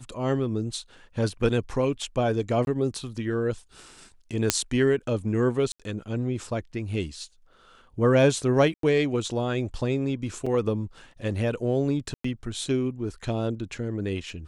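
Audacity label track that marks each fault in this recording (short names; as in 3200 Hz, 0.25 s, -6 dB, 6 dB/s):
2.650000	2.670000	gap 21 ms
4.500000	4.500000	pop -2 dBFS
5.720000	5.800000	gap 76 ms
8.740000	8.830000	gap 93 ms
10.460000	10.460000	gap 4.8 ms
12.140000	12.240000	gap 0.104 s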